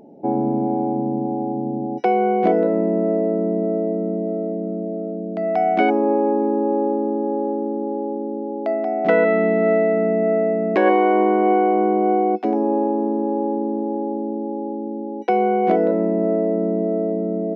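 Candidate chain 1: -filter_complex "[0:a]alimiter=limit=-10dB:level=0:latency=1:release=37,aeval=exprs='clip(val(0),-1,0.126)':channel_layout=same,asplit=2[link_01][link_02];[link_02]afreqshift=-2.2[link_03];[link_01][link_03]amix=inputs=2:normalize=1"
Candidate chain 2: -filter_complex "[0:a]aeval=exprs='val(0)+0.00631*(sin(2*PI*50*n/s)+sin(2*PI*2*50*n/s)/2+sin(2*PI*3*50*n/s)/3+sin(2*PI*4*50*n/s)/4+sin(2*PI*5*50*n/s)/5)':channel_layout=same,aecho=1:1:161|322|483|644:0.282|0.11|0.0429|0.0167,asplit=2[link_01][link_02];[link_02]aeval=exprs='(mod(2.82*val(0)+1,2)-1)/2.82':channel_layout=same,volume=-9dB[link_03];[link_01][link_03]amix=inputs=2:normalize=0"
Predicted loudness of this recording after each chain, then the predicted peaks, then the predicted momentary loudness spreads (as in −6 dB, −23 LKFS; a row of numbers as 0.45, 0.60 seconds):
−25.0, −17.0 LKFS; −12.0, −4.5 dBFS; 7, 9 LU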